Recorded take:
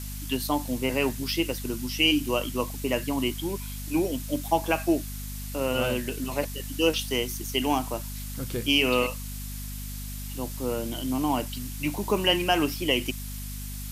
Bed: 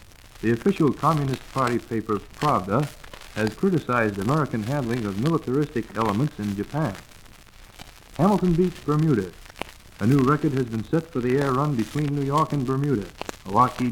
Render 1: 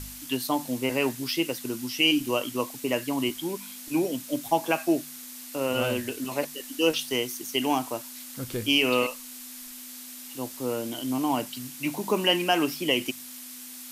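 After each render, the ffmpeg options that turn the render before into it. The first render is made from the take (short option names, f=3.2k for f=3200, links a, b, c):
-af "bandreject=f=50:t=h:w=4,bandreject=f=100:t=h:w=4,bandreject=f=150:t=h:w=4,bandreject=f=200:t=h:w=4"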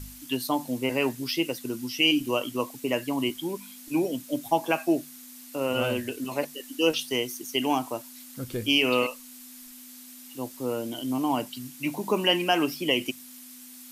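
-af "afftdn=nr=6:nf=-42"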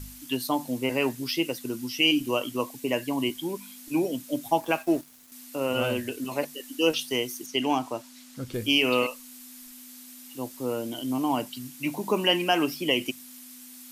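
-filter_complex "[0:a]asettb=1/sr,asplit=3[a][b][c];[a]atrim=end=2.714[d];[b]atrim=start=2.71:end=3.42,asetpts=PTS-STARTPTS,afade=t=in:d=0.004:c=qsin,afade=t=out:st=0.706:d=0.004:c=qsin,asuperstop=centerf=1300:order=4:qfactor=7.7[e];[c]atrim=start=3.416[f];[d][e]acrossfade=d=0.004:c1=hsin:c2=qsin[g];[g][f]acrossfade=d=0.004:c1=qsin:c2=hsin,asettb=1/sr,asplit=3[h][i][j];[h]atrim=end=4.604[k];[i]atrim=start=4.6:end=5.32,asetpts=PTS-STARTPTS,afade=t=in:d=0.004:c=qsin,afade=t=out:st=0.716:d=0.004:c=qsin,aeval=exprs='sgn(val(0))*max(abs(val(0))-0.00473,0)':c=same[l];[j]atrim=start=5.316[m];[k][l]acrossfade=d=0.004:c1=hsin:c2=qsin[n];[n][m]acrossfade=d=0.004:c1=qsin:c2=hsin,asettb=1/sr,asplit=3[o][p][q];[o]atrim=end=7.464[r];[p]atrim=start=7.46:end=8.54,asetpts=PTS-STARTPTS,afade=t=in:d=0.004:c=qsin,afade=t=out:st=1.076:d=0.004:c=qsin,acrossover=split=7800[s][t];[t]acompressor=threshold=-56dB:ratio=4:attack=1:release=60[u];[s][u]amix=inputs=2:normalize=0[v];[q]atrim=start=8.536[w];[r][v]acrossfade=d=0.004:c1=hsin:c2=qsin[x];[x][w]acrossfade=d=0.004:c1=qsin:c2=hsin"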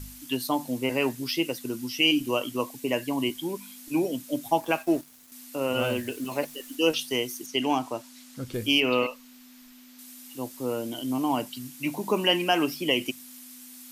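-filter_complex "[0:a]asettb=1/sr,asplit=3[a][b][c];[a]atrim=end=5.794[d];[b]atrim=start=5.79:end=6.76,asetpts=PTS-STARTPTS,afade=t=in:d=0.004:c=qsin,afade=t=out:st=0.966:d=0.004:c=qsin,acrusher=bits=9:dc=4:mix=0:aa=0.000001[e];[c]atrim=start=6.756[f];[d][e]acrossfade=d=0.004:c1=hsin:c2=qsin[g];[g][f]acrossfade=d=0.004:c1=qsin:c2=hsin,asettb=1/sr,asplit=3[h][i][j];[h]atrim=end=8.804[k];[i]atrim=start=8.8:end=9.99,asetpts=PTS-STARTPTS,afade=t=in:d=0.004:c=qsin,afade=t=out:st=1.186:d=0.004:c=qsin,equalizer=f=10k:t=o:w=1.3:g=-13[l];[j]atrim=start=9.986[m];[k][l]acrossfade=d=0.004:c1=hsin:c2=qsin[n];[n][m]acrossfade=d=0.004:c1=qsin:c2=hsin"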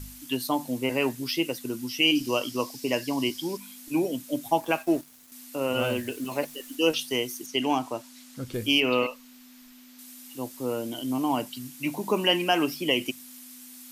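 -filter_complex "[0:a]asettb=1/sr,asplit=3[a][b][c];[a]atrim=end=2.154[d];[b]atrim=start=2.15:end=3.57,asetpts=PTS-STARTPTS,afade=t=in:d=0.004:c=qsin,afade=t=out:st=1.416:d=0.004:c=qsin,equalizer=f=5.1k:w=2.6:g=13.5[e];[c]atrim=start=3.566[f];[d][e]acrossfade=d=0.004:c1=hsin:c2=qsin[g];[g][f]acrossfade=d=0.004:c1=qsin:c2=hsin"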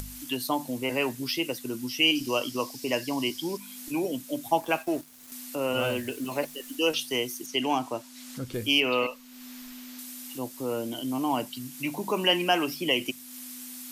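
-filter_complex "[0:a]acrossover=split=460[a][b];[a]alimiter=level_in=2dB:limit=-24dB:level=0:latency=1,volume=-2dB[c];[c][b]amix=inputs=2:normalize=0,acompressor=mode=upward:threshold=-34dB:ratio=2.5"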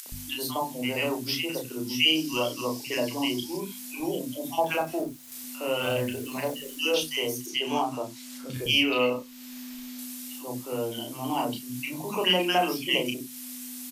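-filter_complex "[0:a]asplit=2[a][b];[b]adelay=32,volume=-4dB[c];[a][c]amix=inputs=2:normalize=0,acrossover=split=300|1300[d][e][f];[e]adelay=60[g];[d]adelay=120[h];[h][g][f]amix=inputs=3:normalize=0"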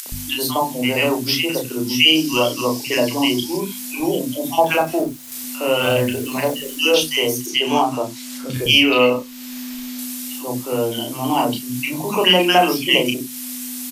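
-af "volume=10dB,alimiter=limit=-2dB:level=0:latency=1"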